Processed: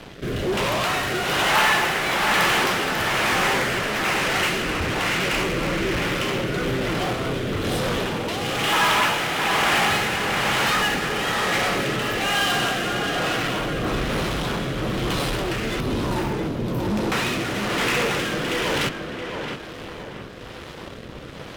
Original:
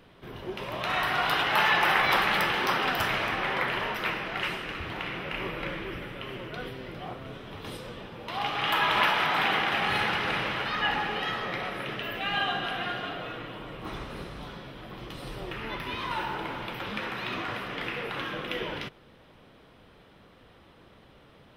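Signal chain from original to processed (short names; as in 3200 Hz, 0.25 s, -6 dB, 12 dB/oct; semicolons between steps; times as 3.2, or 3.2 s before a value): 15.8–17.12 EQ curve 290 Hz 0 dB, 2100 Hz -26 dB, 6500 Hz -6 dB; in parallel at -9.5 dB: fuzz box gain 47 dB, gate -56 dBFS; on the sum: rotary speaker horn 1.1 Hz; tape echo 0.67 s, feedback 47%, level -5 dB, low-pass 2100 Hz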